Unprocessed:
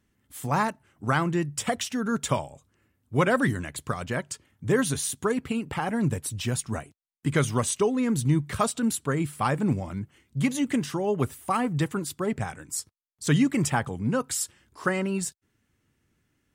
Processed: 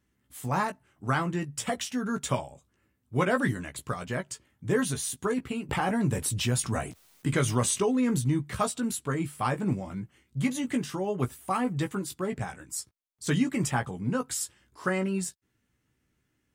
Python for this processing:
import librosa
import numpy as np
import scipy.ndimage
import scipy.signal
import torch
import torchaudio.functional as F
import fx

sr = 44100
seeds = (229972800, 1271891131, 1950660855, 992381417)

y = fx.doubler(x, sr, ms=16.0, db=-6)
y = fx.env_flatten(y, sr, amount_pct=50, at=(5.69, 8.19))
y = y * librosa.db_to_amplitude(-4.0)